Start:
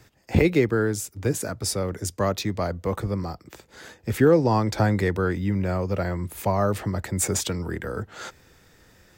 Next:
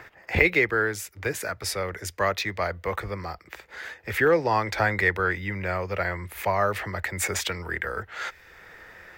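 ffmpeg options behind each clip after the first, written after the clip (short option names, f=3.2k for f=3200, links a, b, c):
-filter_complex "[0:a]equalizer=f=125:t=o:w=1:g=-9,equalizer=f=250:t=o:w=1:g=-11,equalizer=f=2k:t=o:w=1:g=11,equalizer=f=8k:t=o:w=1:g=-6,acrossover=split=110|1700|6100[a][b][c][d];[b]acompressor=mode=upward:threshold=-39dB:ratio=2.5[e];[a][e][c][d]amix=inputs=4:normalize=0"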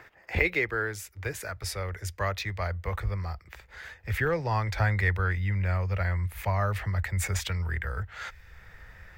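-af "asubboost=boost=10.5:cutoff=100,volume=-5.5dB"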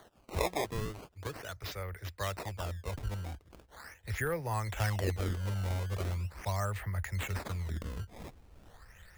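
-af "acrusher=samples=17:mix=1:aa=0.000001:lfo=1:lforange=27.2:lforate=0.4,volume=-6.5dB"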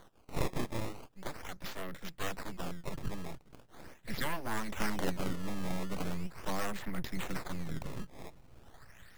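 -af "aeval=exprs='abs(val(0))':c=same,volume=1.5dB"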